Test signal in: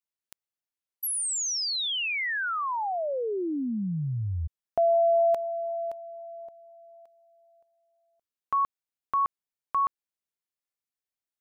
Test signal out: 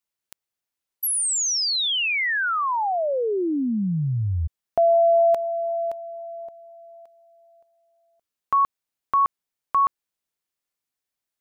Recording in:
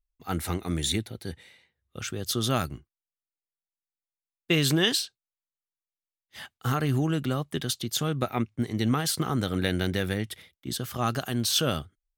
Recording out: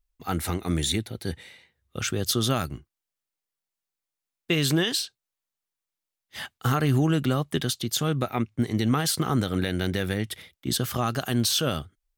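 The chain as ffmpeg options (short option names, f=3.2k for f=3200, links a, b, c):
-af "alimiter=limit=-19.5dB:level=0:latency=1:release=408,volume=6dB"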